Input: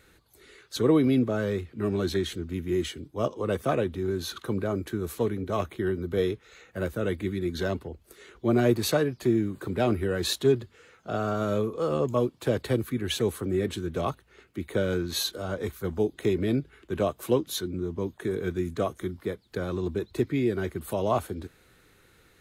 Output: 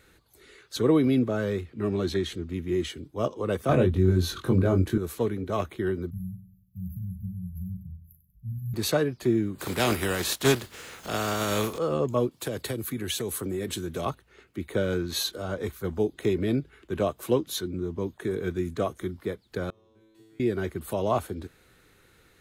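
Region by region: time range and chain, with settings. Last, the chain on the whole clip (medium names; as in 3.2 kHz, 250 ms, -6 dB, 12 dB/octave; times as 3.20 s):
1.70–2.90 s: treble shelf 11 kHz -9 dB + band-stop 1.5 kHz, Q 16
3.69–4.98 s: bass shelf 220 Hz +11.5 dB + doubling 22 ms -3 dB
6.10–8.74 s: brick-wall FIR band-stop 200–11000 Hz + doubling 38 ms -6.5 dB + feedback delay 96 ms, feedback 42%, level -12 dB
9.58–11.77 s: spectral contrast reduction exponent 0.52 + upward compressor, threshold -30 dBFS
12.31–14.06 s: treble shelf 5.2 kHz +12 dB + compression 5:1, threshold -26 dBFS + high-pass 71 Hz
19.70–20.40 s: compression 2.5:1, threshold -34 dBFS + feedback comb 110 Hz, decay 1.6 s, mix 100%
whole clip: none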